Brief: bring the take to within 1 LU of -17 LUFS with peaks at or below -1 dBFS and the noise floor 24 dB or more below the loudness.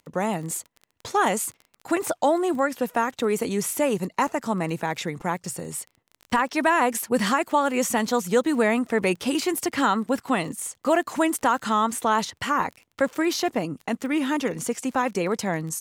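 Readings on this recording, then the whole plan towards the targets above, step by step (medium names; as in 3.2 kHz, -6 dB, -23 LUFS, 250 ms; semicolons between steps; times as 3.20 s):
tick rate 24 per s; loudness -24.5 LUFS; peak level -9.5 dBFS; loudness target -17.0 LUFS
-> de-click; trim +7.5 dB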